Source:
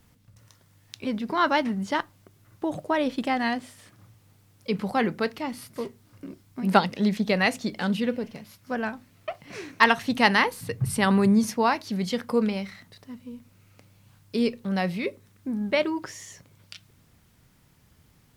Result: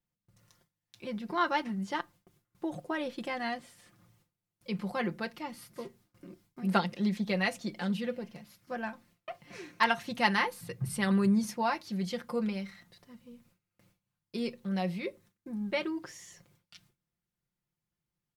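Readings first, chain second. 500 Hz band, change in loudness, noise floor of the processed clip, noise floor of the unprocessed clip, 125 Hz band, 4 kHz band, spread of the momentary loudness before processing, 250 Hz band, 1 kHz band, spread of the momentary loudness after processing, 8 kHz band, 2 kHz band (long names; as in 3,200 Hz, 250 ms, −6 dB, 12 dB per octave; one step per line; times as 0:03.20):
−8.5 dB, −7.0 dB, below −85 dBFS, −60 dBFS, −5.5 dB, −7.5 dB, 19 LU, −7.0 dB, −7.5 dB, 18 LU, −7.5 dB, −7.5 dB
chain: noise gate with hold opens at −45 dBFS
comb filter 5.7 ms, depth 67%
level −9 dB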